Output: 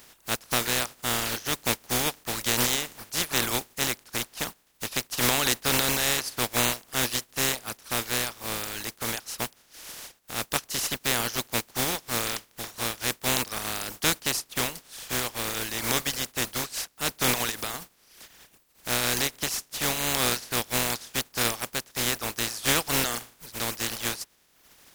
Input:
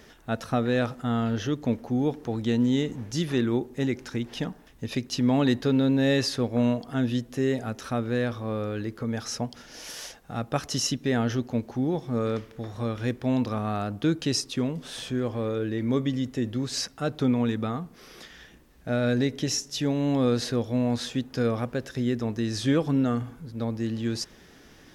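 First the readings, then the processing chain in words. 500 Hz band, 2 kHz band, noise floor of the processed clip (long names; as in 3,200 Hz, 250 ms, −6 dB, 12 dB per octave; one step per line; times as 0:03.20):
−5.5 dB, +7.5 dB, −63 dBFS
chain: compressing power law on the bin magnitudes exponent 0.23
reverb reduction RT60 0.97 s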